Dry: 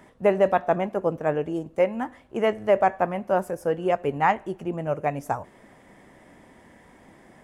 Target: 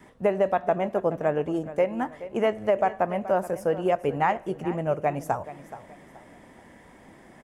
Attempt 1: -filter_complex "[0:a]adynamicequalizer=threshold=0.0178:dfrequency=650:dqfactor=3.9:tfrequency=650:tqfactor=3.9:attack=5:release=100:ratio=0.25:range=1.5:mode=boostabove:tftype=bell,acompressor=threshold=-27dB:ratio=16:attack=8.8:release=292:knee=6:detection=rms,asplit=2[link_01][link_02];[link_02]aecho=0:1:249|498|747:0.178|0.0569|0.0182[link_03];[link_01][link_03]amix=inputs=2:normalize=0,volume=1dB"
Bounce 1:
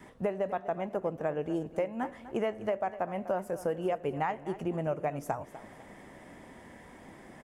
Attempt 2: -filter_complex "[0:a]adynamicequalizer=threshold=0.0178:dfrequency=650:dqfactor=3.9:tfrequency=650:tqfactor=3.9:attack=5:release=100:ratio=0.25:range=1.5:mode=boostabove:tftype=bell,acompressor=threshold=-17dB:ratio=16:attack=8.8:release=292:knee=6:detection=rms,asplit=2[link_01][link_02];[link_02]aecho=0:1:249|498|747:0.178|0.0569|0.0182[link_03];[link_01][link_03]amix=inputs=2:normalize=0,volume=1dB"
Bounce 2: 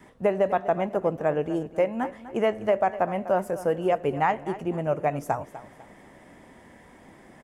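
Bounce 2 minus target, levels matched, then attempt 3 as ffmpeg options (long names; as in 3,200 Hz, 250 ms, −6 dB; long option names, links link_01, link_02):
echo 177 ms early
-filter_complex "[0:a]adynamicequalizer=threshold=0.0178:dfrequency=650:dqfactor=3.9:tfrequency=650:tqfactor=3.9:attack=5:release=100:ratio=0.25:range=1.5:mode=boostabove:tftype=bell,acompressor=threshold=-17dB:ratio=16:attack=8.8:release=292:knee=6:detection=rms,asplit=2[link_01][link_02];[link_02]aecho=0:1:426|852|1278:0.178|0.0569|0.0182[link_03];[link_01][link_03]amix=inputs=2:normalize=0,volume=1dB"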